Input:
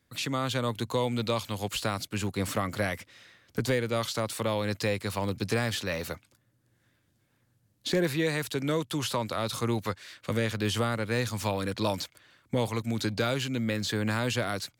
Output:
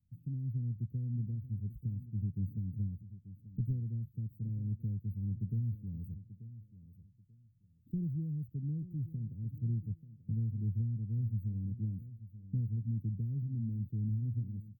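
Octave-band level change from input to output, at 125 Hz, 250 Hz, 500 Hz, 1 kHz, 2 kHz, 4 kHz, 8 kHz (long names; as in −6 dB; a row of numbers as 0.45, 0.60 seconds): −0.5 dB, −9.5 dB, −32.5 dB, below −40 dB, below −40 dB, below −40 dB, below −40 dB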